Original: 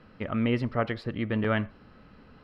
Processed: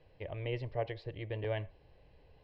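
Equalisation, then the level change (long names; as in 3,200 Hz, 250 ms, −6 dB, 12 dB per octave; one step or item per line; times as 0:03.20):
high-frequency loss of the air 170 metres
parametric band 310 Hz −3.5 dB 2.5 octaves
phaser with its sweep stopped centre 550 Hz, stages 4
−2.5 dB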